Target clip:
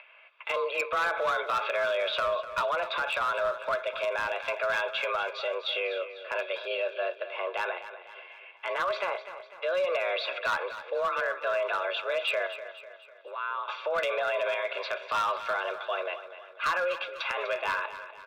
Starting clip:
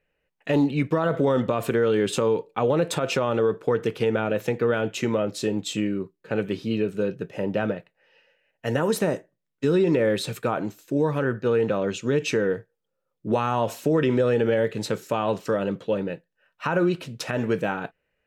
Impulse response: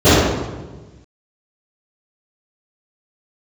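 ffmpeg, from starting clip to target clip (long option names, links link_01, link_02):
-filter_complex "[0:a]asettb=1/sr,asplit=3[link_01][link_02][link_03];[link_01]atrim=end=12.464[link_04];[link_02]atrim=start=12.46:end=13.68,asetpts=PTS-STARTPTS,afade=type=in:duration=0.004:curve=qsin,afade=type=out:start_time=1.216:duration=0.004:curve=qsin,acompressor=threshold=-34dB:ratio=16[link_05];[link_03]atrim=start=13.676[link_06];[link_04][link_05]acrossfade=duration=0.004:curve1=hsin:curve2=qsin[link_07];[link_07][link_06]acrossfade=duration=0.004:curve1=qsin:curve2=hsin,aecho=1:1:0.9:0.97,acompressor=mode=upward:threshold=-40dB:ratio=2.5,highpass=frequency=430:width_type=q:width=0.5412,highpass=frequency=430:width_type=q:width=1.307,lowpass=frequency=3300:width_type=q:width=0.5176,lowpass=frequency=3300:width_type=q:width=0.7071,lowpass=frequency=3300:width_type=q:width=1.932,afreqshift=180,equalizer=frequency=840:width=0.32:gain=-2.5,asoftclip=type=hard:threshold=-24dB,alimiter=level_in=5.5dB:limit=-24dB:level=0:latency=1:release=25,volume=-5.5dB,aecho=1:1:249|498|747|996|1245:0.237|0.114|0.0546|0.0262|0.0126,asplit=3[link_08][link_09][link_10];[link_08]afade=type=out:start_time=2.26:duration=0.02[link_11];[link_09]adynamicequalizer=threshold=0.00631:dfrequency=1700:dqfactor=0.7:tfrequency=1700:tqfactor=0.7:attack=5:release=100:ratio=0.375:range=2:mode=cutabove:tftype=highshelf,afade=type=in:start_time=2.26:duration=0.02,afade=type=out:start_time=4.31:duration=0.02[link_12];[link_10]afade=type=in:start_time=4.31:duration=0.02[link_13];[link_11][link_12][link_13]amix=inputs=3:normalize=0,volume=7dB"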